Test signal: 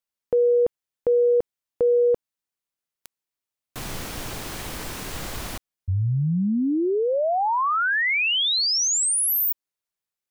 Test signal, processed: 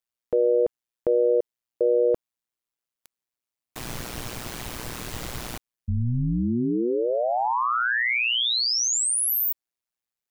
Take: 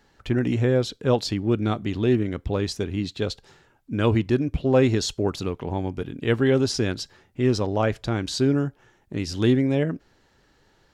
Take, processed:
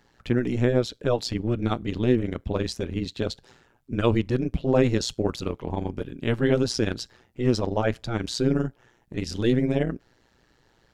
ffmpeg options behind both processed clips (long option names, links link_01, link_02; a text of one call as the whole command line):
ffmpeg -i in.wav -af "tremolo=f=120:d=0.857,volume=2dB" out.wav